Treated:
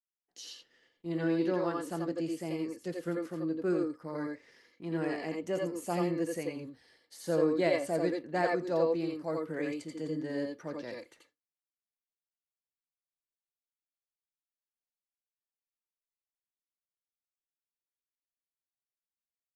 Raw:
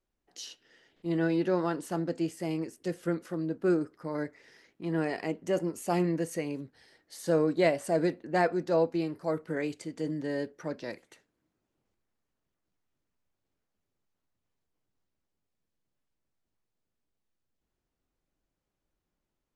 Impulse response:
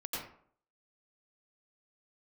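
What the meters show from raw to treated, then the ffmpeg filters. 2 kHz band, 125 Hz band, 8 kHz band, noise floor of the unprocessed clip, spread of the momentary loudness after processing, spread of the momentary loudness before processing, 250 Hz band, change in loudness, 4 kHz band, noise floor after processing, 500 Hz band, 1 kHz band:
-2.5 dB, -4.5 dB, -3.5 dB, -85 dBFS, 15 LU, 13 LU, -2.5 dB, -2.0 dB, -2.0 dB, under -85 dBFS, -2.0 dB, -3.0 dB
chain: -filter_complex "[0:a]agate=range=-33dB:threshold=-58dB:ratio=3:detection=peak[a];[1:a]atrim=start_sample=2205,atrim=end_sample=3969[b];[a][b]afir=irnorm=-1:irlink=0"

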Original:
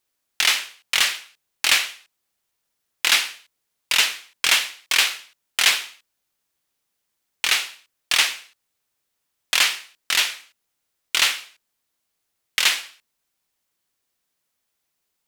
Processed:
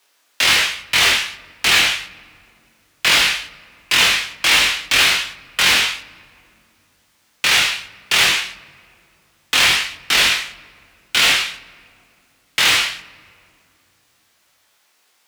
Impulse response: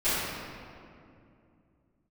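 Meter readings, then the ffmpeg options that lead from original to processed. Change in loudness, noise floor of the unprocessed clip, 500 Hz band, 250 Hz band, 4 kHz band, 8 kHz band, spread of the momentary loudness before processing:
+5.0 dB, -77 dBFS, +10.5 dB, +14.5 dB, +5.5 dB, +3.5 dB, 13 LU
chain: -filter_complex "[0:a]asplit=2[a][b];[b]highpass=f=720:p=1,volume=30dB,asoftclip=type=tanh:threshold=-3dB[c];[a][c]amix=inputs=2:normalize=0,lowpass=f=4k:p=1,volume=-6dB,afreqshift=25,flanger=delay=20:depth=2.8:speed=1.3,asplit=2[d][e];[1:a]atrim=start_sample=2205,lowshelf=f=130:g=7,adelay=36[f];[e][f]afir=irnorm=-1:irlink=0,volume=-33dB[g];[d][g]amix=inputs=2:normalize=0,volume=1dB"

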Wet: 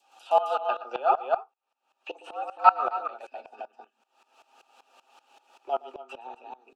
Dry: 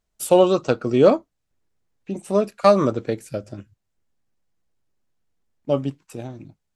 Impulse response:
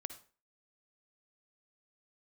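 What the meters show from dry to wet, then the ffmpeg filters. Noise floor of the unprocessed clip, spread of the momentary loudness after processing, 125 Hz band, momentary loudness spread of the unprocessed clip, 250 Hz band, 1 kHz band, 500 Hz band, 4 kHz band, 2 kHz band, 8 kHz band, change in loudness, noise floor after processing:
-77 dBFS, 23 LU, under -40 dB, 20 LU, under -25 dB, +2.5 dB, -12.0 dB, under -10 dB, -3.0 dB, under -25 dB, -7.0 dB, -80 dBFS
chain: -filter_complex "[0:a]highpass=130,highshelf=f=2.3k:g=10,aecho=1:1:7.4:0.43,adynamicequalizer=threshold=0.0355:dfrequency=1200:dqfactor=0.71:tfrequency=1200:tqfactor=0.71:attack=5:release=100:ratio=0.375:range=3.5:mode=boostabove:tftype=bell,acrossover=split=4200[a][b];[b]acompressor=threshold=-47dB:ratio=6[c];[a][c]amix=inputs=2:normalize=0,asplit=3[d][e][f];[d]bandpass=f=730:t=q:w=8,volume=0dB[g];[e]bandpass=f=1.09k:t=q:w=8,volume=-6dB[h];[f]bandpass=f=2.44k:t=q:w=8,volume=-9dB[i];[g][h][i]amix=inputs=3:normalize=0,afreqshift=120,acompressor=mode=upward:threshold=-28dB:ratio=2.5,asplit=2[j][k];[k]aecho=0:1:116.6|265.3:0.316|0.562[l];[j][l]amix=inputs=2:normalize=0,aeval=exprs='val(0)*pow(10,-19*if(lt(mod(-5.2*n/s,1),2*abs(-5.2)/1000),1-mod(-5.2*n/s,1)/(2*abs(-5.2)/1000),(mod(-5.2*n/s,1)-2*abs(-5.2)/1000)/(1-2*abs(-5.2)/1000))/20)':c=same,volume=3dB"

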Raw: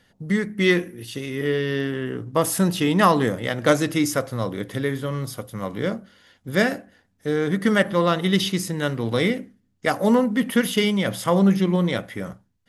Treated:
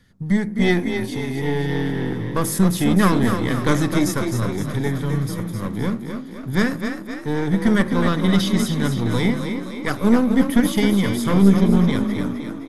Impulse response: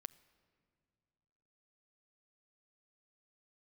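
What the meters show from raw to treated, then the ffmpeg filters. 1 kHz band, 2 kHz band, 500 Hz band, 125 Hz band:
-1.5 dB, -1.0 dB, -2.0 dB, +5.0 dB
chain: -filter_complex "[0:a]lowshelf=f=240:g=9,asplit=2[a][b];[b]asoftclip=type=tanh:threshold=-17.5dB,volume=-10dB[c];[a][c]amix=inputs=2:normalize=0,bandreject=f=2.8k:w=6,asplit=8[d][e][f][g][h][i][j][k];[e]adelay=259,afreqshift=33,volume=-7dB[l];[f]adelay=518,afreqshift=66,volume=-12.2dB[m];[g]adelay=777,afreqshift=99,volume=-17.4dB[n];[h]adelay=1036,afreqshift=132,volume=-22.6dB[o];[i]adelay=1295,afreqshift=165,volume=-27.8dB[p];[j]adelay=1554,afreqshift=198,volume=-33dB[q];[k]adelay=1813,afreqshift=231,volume=-38.2dB[r];[d][l][m][n][o][p][q][r]amix=inputs=8:normalize=0,acrossover=split=500|1000[s][t][u];[s]aeval=exprs='0.708*(cos(1*acos(clip(val(0)/0.708,-1,1)))-cos(1*PI/2))+0.2*(cos(2*acos(clip(val(0)/0.708,-1,1)))-cos(2*PI/2))':c=same[v];[t]aeval=exprs='abs(val(0))':c=same[w];[v][w][u]amix=inputs=3:normalize=0,volume=-2.5dB"

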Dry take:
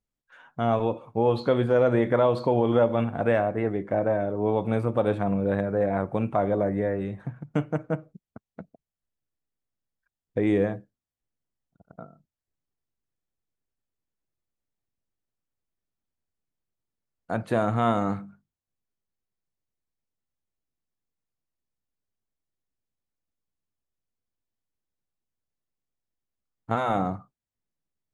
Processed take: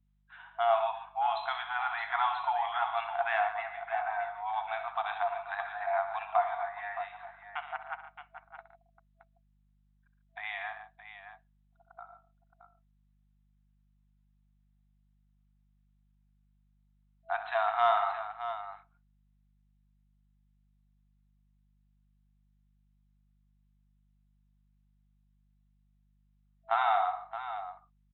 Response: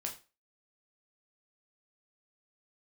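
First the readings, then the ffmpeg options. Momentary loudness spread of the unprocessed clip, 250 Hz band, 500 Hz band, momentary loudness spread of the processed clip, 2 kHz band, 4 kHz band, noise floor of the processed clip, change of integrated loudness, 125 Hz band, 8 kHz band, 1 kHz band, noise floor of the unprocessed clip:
11 LU, under -40 dB, -11.5 dB, 19 LU, +1.5 dB, +1.0 dB, -69 dBFS, -7.0 dB, under -35 dB, n/a, +1.5 dB, under -85 dBFS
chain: -af "afftfilt=real='re*between(b*sr/4096,660,4100)':imag='im*between(b*sr/4096,660,4100)':win_size=4096:overlap=0.75,acontrast=72,aeval=exprs='val(0)+0.000631*(sin(2*PI*50*n/s)+sin(2*PI*2*50*n/s)/2+sin(2*PI*3*50*n/s)/3+sin(2*PI*4*50*n/s)/4+sin(2*PI*5*50*n/s)/5)':c=same,aecho=1:1:66|114|142|620:0.266|0.211|0.2|0.282,volume=-6dB"

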